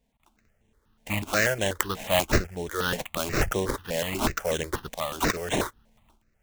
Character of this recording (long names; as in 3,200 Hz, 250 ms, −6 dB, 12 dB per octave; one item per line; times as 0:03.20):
tremolo saw up 0.81 Hz, depth 55%
aliases and images of a low sample rate 4,800 Hz, jitter 20%
notches that jump at a steady rate 8.2 Hz 340–4,700 Hz